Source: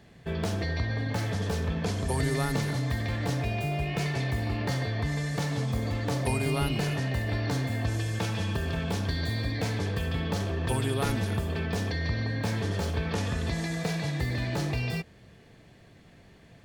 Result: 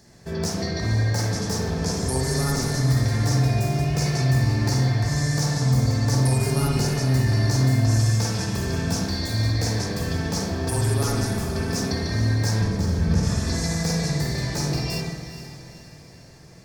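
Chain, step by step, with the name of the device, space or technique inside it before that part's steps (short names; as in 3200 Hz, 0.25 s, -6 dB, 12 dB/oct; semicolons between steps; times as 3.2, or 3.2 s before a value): 12.61–13.23 tone controls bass +14 dB, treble -5 dB; over-bright horn tweeter (resonant high shelf 4100 Hz +9.5 dB, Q 3; limiter -17.5 dBFS, peak gain reduction 10 dB); diffused feedback echo 0.458 s, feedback 48%, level -12 dB; spring tank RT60 1 s, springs 46/54 ms, chirp 20 ms, DRR -3 dB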